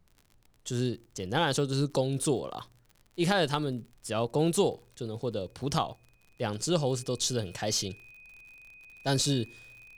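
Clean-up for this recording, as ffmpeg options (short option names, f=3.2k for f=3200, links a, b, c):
-af "adeclick=t=4,bandreject=f=2.5k:w=30,agate=range=-21dB:threshold=-54dB"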